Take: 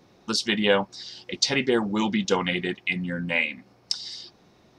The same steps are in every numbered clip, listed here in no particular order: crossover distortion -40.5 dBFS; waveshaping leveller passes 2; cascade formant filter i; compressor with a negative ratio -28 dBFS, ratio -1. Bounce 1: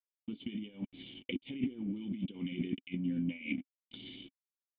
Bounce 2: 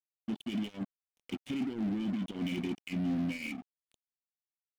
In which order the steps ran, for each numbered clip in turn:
waveshaping leveller > compressor with a negative ratio > crossover distortion > cascade formant filter; compressor with a negative ratio > cascade formant filter > waveshaping leveller > crossover distortion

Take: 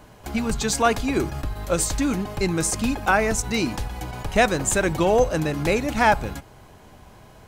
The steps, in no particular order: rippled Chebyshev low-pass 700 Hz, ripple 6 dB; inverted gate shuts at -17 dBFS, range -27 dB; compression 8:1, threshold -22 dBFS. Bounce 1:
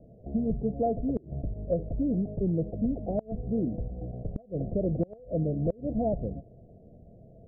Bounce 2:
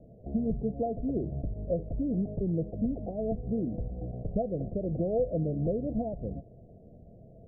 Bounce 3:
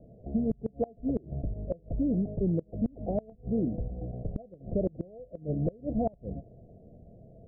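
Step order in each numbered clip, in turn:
rippled Chebyshev low-pass > compression > inverted gate; compression > rippled Chebyshev low-pass > inverted gate; rippled Chebyshev low-pass > inverted gate > compression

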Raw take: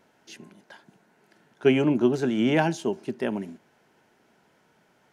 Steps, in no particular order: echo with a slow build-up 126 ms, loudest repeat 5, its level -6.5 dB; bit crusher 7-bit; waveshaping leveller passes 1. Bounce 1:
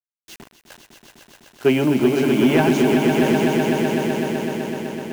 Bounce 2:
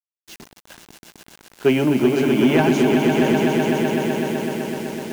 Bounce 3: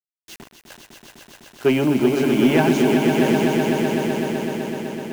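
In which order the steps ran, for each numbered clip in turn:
bit crusher > echo with a slow build-up > waveshaping leveller; echo with a slow build-up > bit crusher > waveshaping leveller; bit crusher > waveshaping leveller > echo with a slow build-up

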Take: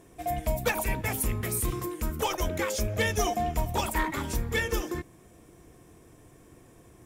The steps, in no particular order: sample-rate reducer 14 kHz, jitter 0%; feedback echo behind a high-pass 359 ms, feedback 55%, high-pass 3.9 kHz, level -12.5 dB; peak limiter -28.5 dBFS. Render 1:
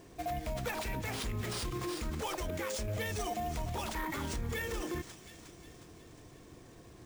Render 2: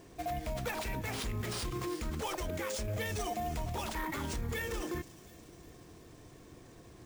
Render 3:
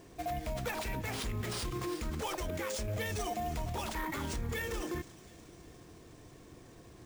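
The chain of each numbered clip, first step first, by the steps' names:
feedback echo behind a high-pass > peak limiter > sample-rate reducer; peak limiter > sample-rate reducer > feedback echo behind a high-pass; peak limiter > feedback echo behind a high-pass > sample-rate reducer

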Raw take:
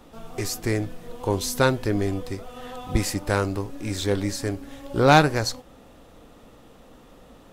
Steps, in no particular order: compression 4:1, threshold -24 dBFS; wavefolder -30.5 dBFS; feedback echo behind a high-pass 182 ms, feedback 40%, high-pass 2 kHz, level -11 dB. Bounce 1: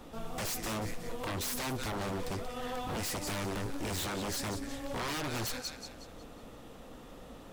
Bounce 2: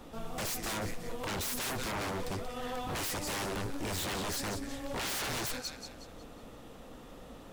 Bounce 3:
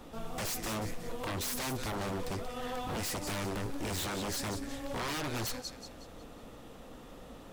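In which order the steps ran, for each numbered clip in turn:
feedback echo behind a high-pass > compression > wavefolder; feedback echo behind a high-pass > wavefolder > compression; compression > feedback echo behind a high-pass > wavefolder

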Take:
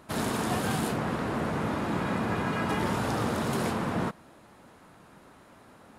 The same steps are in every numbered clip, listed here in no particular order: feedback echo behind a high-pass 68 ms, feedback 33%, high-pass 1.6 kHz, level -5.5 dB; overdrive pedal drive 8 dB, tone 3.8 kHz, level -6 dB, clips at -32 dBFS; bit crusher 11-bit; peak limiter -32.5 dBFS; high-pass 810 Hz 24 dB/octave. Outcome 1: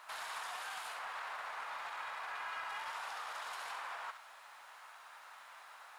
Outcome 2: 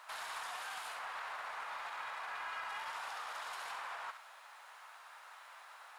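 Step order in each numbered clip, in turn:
peak limiter > high-pass > bit crusher > overdrive pedal > feedback echo behind a high-pass; peak limiter > feedback echo behind a high-pass > bit crusher > high-pass > overdrive pedal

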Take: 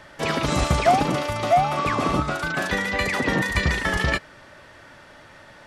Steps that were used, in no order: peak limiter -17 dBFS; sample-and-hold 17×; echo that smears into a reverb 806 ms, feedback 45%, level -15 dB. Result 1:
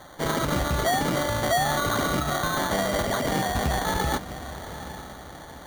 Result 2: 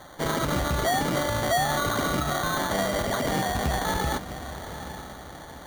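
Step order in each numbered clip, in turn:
echo that smears into a reverb > sample-and-hold > peak limiter; echo that smears into a reverb > peak limiter > sample-and-hold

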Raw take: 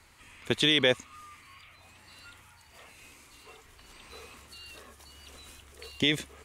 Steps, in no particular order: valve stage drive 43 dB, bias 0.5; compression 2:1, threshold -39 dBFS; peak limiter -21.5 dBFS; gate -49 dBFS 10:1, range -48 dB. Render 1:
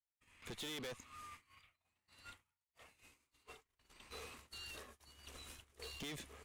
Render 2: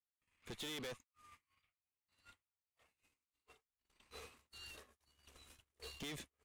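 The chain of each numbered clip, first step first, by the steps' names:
gate > compression > peak limiter > valve stage; compression > peak limiter > valve stage > gate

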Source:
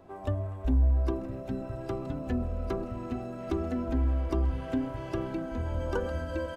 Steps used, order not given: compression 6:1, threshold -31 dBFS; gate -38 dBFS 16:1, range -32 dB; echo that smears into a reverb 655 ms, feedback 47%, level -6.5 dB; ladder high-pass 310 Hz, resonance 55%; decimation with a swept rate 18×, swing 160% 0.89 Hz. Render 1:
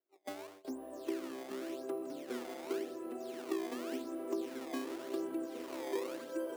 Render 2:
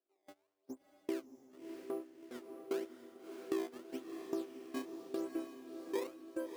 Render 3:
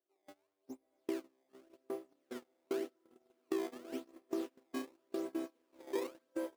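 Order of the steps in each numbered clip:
echo that smears into a reverb > gate > decimation with a swept rate > ladder high-pass > compression; decimation with a swept rate > ladder high-pass > compression > gate > echo that smears into a reverb; decimation with a swept rate > ladder high-pass > compression > echo that smears into a reverb > gate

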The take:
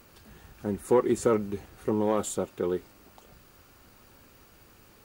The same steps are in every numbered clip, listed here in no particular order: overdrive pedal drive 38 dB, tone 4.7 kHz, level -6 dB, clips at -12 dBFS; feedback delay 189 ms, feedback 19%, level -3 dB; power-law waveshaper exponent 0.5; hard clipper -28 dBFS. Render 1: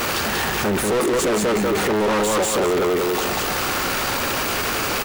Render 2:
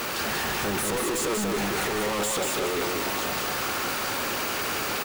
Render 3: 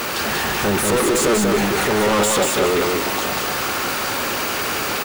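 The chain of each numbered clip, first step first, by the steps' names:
feedback delay > hard clipper > power-law waveshaper > overdrive pedal; overdrive pedal > hard clipper > power-law waveshaper > feedback delay; hard clipper > overdrive pedal > power-law waveshaper > feedback delay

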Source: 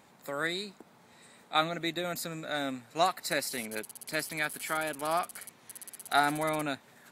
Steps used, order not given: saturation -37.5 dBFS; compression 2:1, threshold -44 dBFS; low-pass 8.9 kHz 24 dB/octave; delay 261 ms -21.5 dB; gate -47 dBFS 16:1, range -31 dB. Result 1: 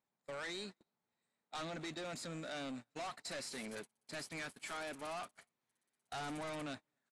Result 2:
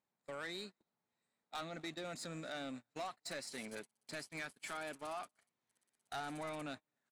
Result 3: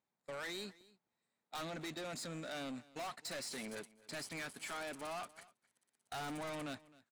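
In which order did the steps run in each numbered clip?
saturation > delay > compression > low-pass > gate; low-pass > compression > saturation > delay > gate; low-pass > saturation > compression > gate > delay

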